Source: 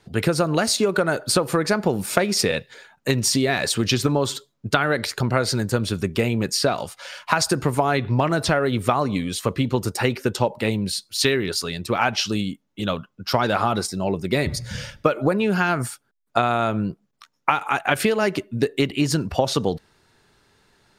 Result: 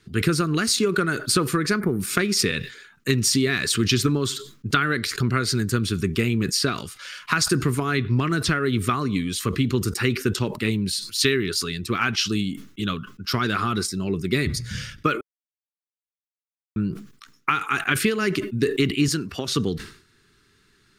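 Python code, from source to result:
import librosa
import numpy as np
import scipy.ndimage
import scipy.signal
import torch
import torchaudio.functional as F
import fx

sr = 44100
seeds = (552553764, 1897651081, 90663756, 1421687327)

y = fx.spec_box(x, sr, start_s=1.8, length_s=0.2, low_hz=2400.0, high_hz=8800.0, gain_db=-20)
y = fx.highpass(y, sr, hz=290.0, slope=6, at=(19.08, 19.48))
y = fx.edit(y, sr, fx.silence(start_s=15.21, length_s=1.55), tone=tone)
y = fx.band_shelf(y, sr, hz=690.0, db=-16.0, octaves=1.1)
y = fx.sustainer(y, sr, db_per_s=110.0)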